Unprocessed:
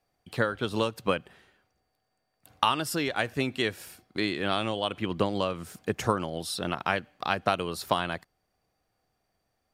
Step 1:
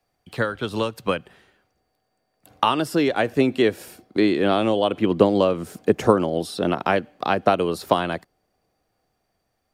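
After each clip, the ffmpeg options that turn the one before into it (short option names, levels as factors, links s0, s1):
-filter_complex "[0:a]acrossover=split=210|660|3400[s0][s1][s2][s3];[s1]dynaudnorm=f=540:g=9:m=3.55[s4];[s3]alimiter=level_in=2.24:limit=0.0631:level=0:latency=1:release=83,volume=0.447[s5];[s0][s4][s2][s5]amix=inputs=4:normalize=0,volume=1.41"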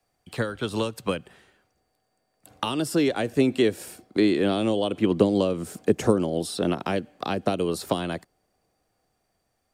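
-filter_complex "[0:a]equalizer=f=8200:w=1.7:g=6,acrossover=split=480|3000[s0][s1][s2];[s1]acompressor=threshold=0.0355:ratio=6[s3];[s0][s3][s2]amix=inputs=3:normalize=0,volume=0.891"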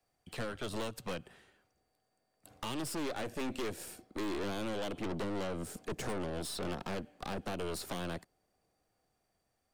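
-af "aeval=exprs='(tanh(39.8*val(0)+0.6)-tanh(0.6))/39.8':c=same,volume=0.708"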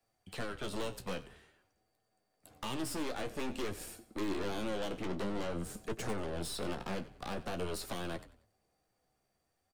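-filter_complex "[0:a]flanger=delay=8.8:depth=7.3:regen=44:speed=0.5:shape=sinusoidal,asplit=4[s0][s1][s2][s3];[s1]adelay=93,afreqshift=-36,volume=0.141[s4];[s2]adelay=186,afreqshift=-72,volume=0.0507[s5];[s3]adelay=279,afreqshift=-108,volume=0.0184[s6];[s0][s4][s5][s6]amix=inputs=4:normalize=0,volume=1.5"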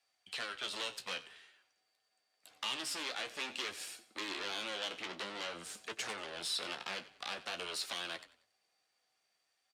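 -af "bandpass=f=3500:t=q:w=0.89:csg=0,volume=2.51"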